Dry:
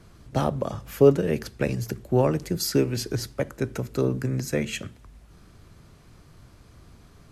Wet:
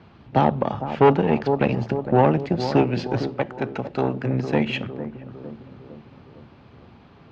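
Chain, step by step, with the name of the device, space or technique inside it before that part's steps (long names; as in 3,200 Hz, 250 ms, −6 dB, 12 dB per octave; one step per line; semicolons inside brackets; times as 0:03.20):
analogue delay pedal into a guitar amplifier (bucket-brigade delay 455 ms, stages 4,096, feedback 54%, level −11 dB; tube saturation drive 17 dB, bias 0.7; loudspeaker in its box 90–3,800 Hz, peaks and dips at 230 Hz +4 dB, 840 Hz +9 dB, 2,700 Hz +4 dB)
0:03.34–0:04.26: low-shelf EQ 420 Hz −5.5 dB
level +7 dB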